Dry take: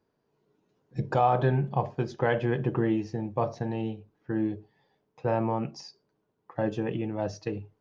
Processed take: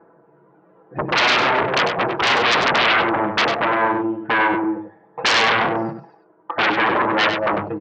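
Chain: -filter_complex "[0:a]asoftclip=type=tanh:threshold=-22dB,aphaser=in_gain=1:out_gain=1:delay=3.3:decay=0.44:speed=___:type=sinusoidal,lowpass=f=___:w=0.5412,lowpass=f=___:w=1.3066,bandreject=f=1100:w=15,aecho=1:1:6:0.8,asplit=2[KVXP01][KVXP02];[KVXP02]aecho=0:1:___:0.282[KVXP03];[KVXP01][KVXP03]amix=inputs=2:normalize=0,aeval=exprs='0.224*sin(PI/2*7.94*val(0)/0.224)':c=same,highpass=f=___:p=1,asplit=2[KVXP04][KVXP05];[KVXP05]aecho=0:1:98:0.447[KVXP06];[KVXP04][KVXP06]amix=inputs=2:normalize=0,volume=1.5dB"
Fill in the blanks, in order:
0.38, 1400, 1400, 235, 720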